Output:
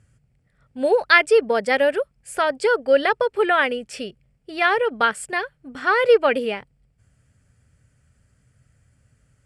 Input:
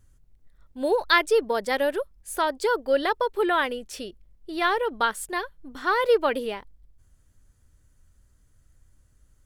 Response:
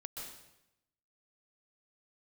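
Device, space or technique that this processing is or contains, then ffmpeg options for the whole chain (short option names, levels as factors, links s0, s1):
car door speaker: -af "highpass=98,equalizer=f=130:t=q:w=4:g=8,equalizer=f=330:t=q:w=4:g=-10,equalizer=f=1000:t=q:w=4:g=-9,equalizer=f=2400:t=q:w=4:g=4,equalizer=f=3800:t=q:w=4:g=-10,equalizer=f=6300:t=q:w=4:g=-10,lowpass=f=8600:w=0.5412,lowpass=f=8600:w=1.3066,volume=2.24"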